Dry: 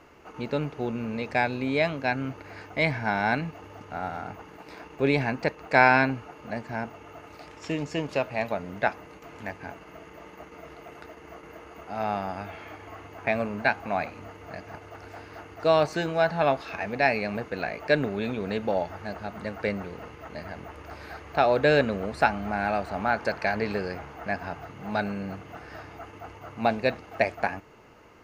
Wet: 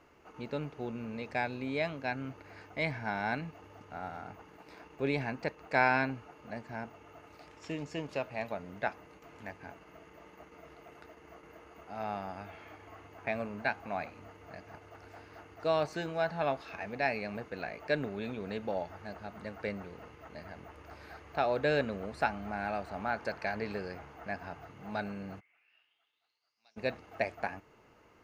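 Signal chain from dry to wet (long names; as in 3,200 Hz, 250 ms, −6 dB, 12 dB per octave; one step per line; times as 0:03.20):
0:25.39–0:26.76: resonant band-pass 2,100 Hz → 5,700 Hz, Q 12
level −8.5 dB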